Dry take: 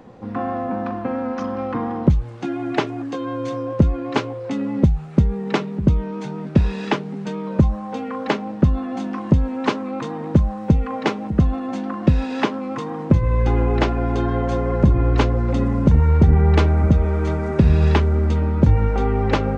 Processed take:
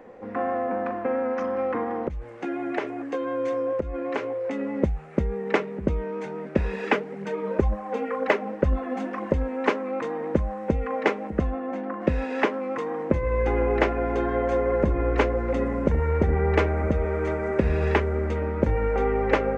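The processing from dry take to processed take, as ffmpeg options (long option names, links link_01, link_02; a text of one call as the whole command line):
ffmpeg -i in.wav -filter_complex "[0:a]asettb=1/sr,asplit=3[link_01][link_02][link_03];[link_01]atrim=end=1.824[link_04];[link_02]atrim=start=1.82:end=4.6,asetpts=PTS-STARTPTS,afade=type=in:duration=0.004:curve=qsin,afade=type=out:start_time=2.776:duration=0.004:curve=qsin,acompressor=threshold=-20dB:ratio=6:attack=3.2:release=140:knee=1:detection=peak[link_05];[link_03]atrim=start=4.596[link_06];[link_04][link_05]acrossfade=duration=0.004:curve1=hsin:curve2=qsin[link_07];[link_07][link_06]acrossfade=duration=0.004:curve1=qsin:curve2=hsin,asettb=1/sr,asplit=3[link_08][link_09][link_10];[link_08]atrim=end=6.734[link_11];[link_09]atrim=start=6.73:end=9.43,asetpts=PTS-STARTPTS,afade=type=in:duration=0.004:curve=qsin,afade=type=out:start_time=2.696:duration=0.004:curve=qsin,aphaser=in_gain=1:out_gain=1:delay=5:decay=0.44:speed=2:type=triangular[link_12];[link_10]atrim=start=9.426[link_13];[link_11][link_12]acrossfade=duration=0.004:curve1=hsin:curve2=qsin[link_14];[link_14][link_13]acrossfade=duration=0.004:curve1=qsin:curve2=hsin,asplit=3[link_15][link_16][link_17];[link_15]afade=type=out:start_time=11.49:duration=0.02[link_18];[link_16]highshelf=frequency=3100:gain=-12,afade=type=in:start_time=11.49:duration=0.02,afade=type=out:start_time=12:duration=0.02[link_19];[link_17]afade=type=in:start_time=12:duration=0.02[link_20];[link_18][link_19][link_20]amix=inputs=3:normalize=0,equalizer=frequency=125:width_type=o:width=1:gain=-11,equalizer=frequency=500:width_type=o:width=1:gain=9,equalizer=frequency=2000:width_type=o:width=1:gain=10,equalizer=frequency=4000:width_type=o:width=1:gain=-7,volume=-6.5dB" out.wav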